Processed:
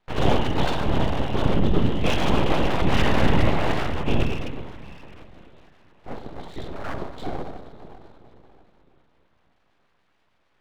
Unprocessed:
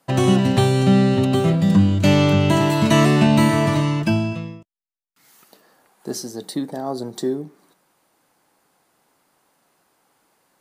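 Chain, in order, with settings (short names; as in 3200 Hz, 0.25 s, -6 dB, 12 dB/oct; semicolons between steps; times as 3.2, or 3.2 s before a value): two-slope reverb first 0.47 s, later 3.8 s, from -17 dB, DRR -7 dB; LPC vocoder at 8 kHz whisper; full-wave rectifier; gain -8 dB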